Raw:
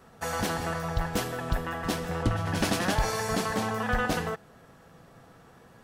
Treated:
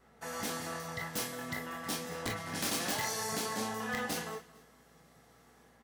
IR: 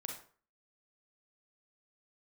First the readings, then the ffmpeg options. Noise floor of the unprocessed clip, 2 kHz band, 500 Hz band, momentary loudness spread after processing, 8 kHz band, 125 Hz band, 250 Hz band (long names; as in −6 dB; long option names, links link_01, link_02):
−55 dBFS, −6.5 dB, −9.0 dB, 6 LU, 0.0 dB, −14.5 dB, −9.0 dB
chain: -filter_complex "[0:a]acrossover=split=100|590|4000[link_01][link_02][link_03][link_04];[link_01]aeval=exprs='val(0)*sin(2*PI*2000*n/s)':channel_layout=same[link_05];[link_04]dynaudnorm=framelen=280:gausssize=3:maxgain=9.5dB[link_06];[link_05][link_02][link_03][link_06]amix=inputs=4:normalize=0,aeval=exprs='(mod(5.96*val(0)+1,2)-1)/5.96':channel_layout=same,aecho=1:1:225|450:0.1|0.031[link_07];[1:a]atrim=start_sample=2205,afade=type=out:start_time=0.16:duration=0.01,atrim=end_sample=7497,asetrate=74970,aresample=44100[link_08];[link_07][link_08]afir=irnorm=-1:irlink=0,aeval=exprs='val(0)+0.000355*(sin(2*PI*60*n/s)+sin(2*PI*2*60*n/s)/2+sin(2*PI*3*60*n/s)/3+sin(2*PI*4*60*n/s)/4+sin(2*PI*5*60*n/s)/5)':channel_layout=same,volume=-2dB"